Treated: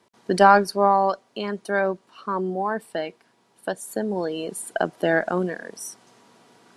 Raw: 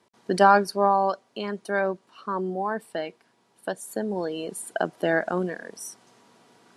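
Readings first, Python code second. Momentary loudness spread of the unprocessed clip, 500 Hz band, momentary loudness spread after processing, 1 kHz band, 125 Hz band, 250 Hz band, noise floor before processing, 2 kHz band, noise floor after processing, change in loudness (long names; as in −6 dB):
17 LU, +2.5 dB, 17 LU, +2.5 dB, +2.5 dB, +2.5 dB, −66 dBFS, +2.5 dB, −63 dBFS, +2.5 dB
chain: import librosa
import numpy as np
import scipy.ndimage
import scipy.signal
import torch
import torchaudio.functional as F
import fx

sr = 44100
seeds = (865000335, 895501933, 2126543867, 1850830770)

y = fx.cheby_harmonics(x, sr, harmonics=(2,), levels_db=(-24,), full_scale_db=-4.5)
y = y * librosa.db_to_amplitude(2.5)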